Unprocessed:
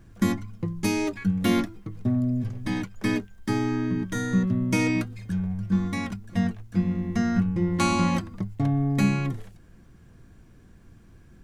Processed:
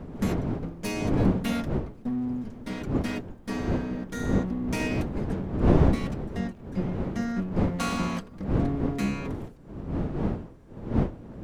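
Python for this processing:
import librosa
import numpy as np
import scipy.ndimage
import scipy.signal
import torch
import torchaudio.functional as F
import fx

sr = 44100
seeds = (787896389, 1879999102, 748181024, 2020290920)

y = fx.lower_of_two(x, sr, delay_ms=4.3)
y = fx.dmg_wind(y, sr, seeds[0], corner_hz=270.0, level_db=-24.0)
y = y * 10.0 ** (-5.0 / 20.0)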